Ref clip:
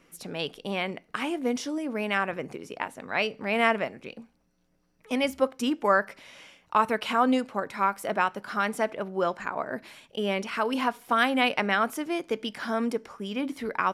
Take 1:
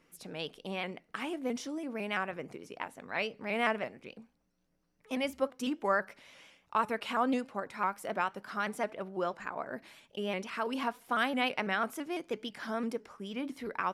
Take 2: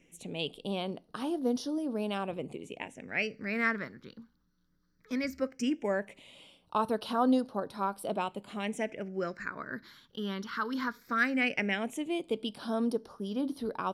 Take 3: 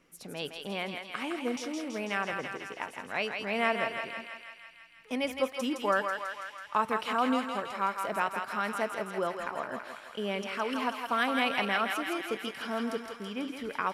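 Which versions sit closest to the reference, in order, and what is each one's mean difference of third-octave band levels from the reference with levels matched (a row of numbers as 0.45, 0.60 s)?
1, 2, 3; 1.5, 4.0, 5.5 dB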